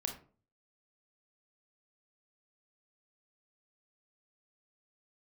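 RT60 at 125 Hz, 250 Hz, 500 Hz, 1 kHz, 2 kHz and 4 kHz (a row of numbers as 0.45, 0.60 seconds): 0.60, 0.50, 0.45, 0.40, 0.30, 0.20 seconds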